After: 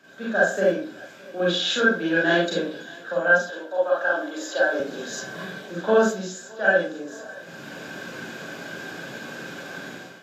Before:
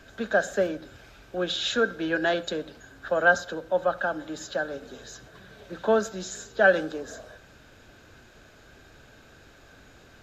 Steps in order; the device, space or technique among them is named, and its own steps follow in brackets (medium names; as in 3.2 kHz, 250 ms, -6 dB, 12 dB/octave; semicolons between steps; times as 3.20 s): far laptop microphone (reverberation RT60 0.35 s, pre-delay 32 ms, DRR -6 dB; high-pass 150 Hz 24 dB/octave; level rider gain up to 15 dB); 3.50–4.80 s: high-pass 290 Hz 24 dB/octave; thinning echo 615 ms, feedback 67%, high-pass 420 Hz, level -22 dB; trim -5.5 dB